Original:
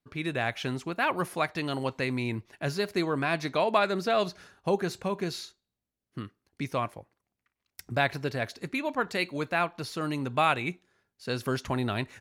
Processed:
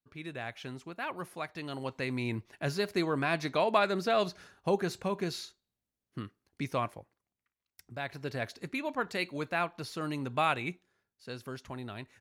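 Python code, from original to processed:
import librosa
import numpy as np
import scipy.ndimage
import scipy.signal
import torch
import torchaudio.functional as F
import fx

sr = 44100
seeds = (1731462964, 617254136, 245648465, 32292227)

y = fx.gain(x, sr, db=fx.line((1.46, -10.0), (2.33, -2.0), (6.9, -2.0), (7.98, -13.0), (8.35, -4.0), (10.7, -4.0), (11.49, -12.0)))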